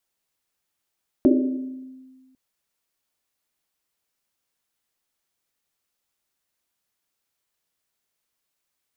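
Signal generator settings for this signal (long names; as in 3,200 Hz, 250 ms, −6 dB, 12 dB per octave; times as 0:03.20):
drum after Risset, pitch 260 Hz, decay 1.60 s, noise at 330 Hz, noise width 120 Hz, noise 35%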